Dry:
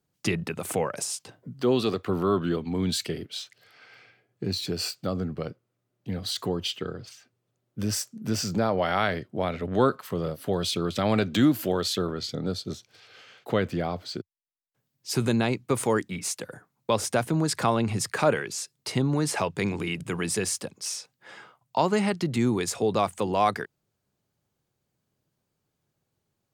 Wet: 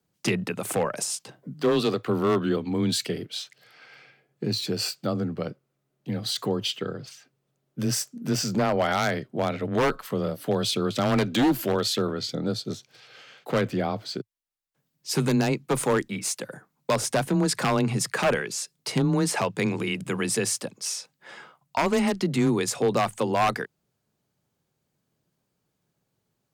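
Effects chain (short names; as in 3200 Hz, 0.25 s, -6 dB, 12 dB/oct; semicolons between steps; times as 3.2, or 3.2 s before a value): wavefolder -16.5 dBFS; frequency shift +17 Hz; gain +2 dB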